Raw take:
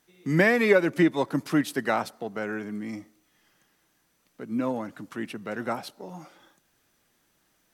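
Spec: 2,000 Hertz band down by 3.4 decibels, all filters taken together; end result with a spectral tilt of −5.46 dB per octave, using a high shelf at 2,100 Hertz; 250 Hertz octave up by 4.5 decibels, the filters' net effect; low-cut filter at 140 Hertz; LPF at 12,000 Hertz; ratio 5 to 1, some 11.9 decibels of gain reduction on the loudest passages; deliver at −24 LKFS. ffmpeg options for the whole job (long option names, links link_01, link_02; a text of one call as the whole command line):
ffmpeg -i in.wav -af "highpass=140,lowpass=12000,equalizer=frequency=250:width_type=o:gain=6.5,equalizer=frequency=2000:width_type=o:gain=-6,highshelf=frequency=2100:gain=3.5,acompressor=threshold=-27dB:ratio=5,volume=8.5dB" out.wav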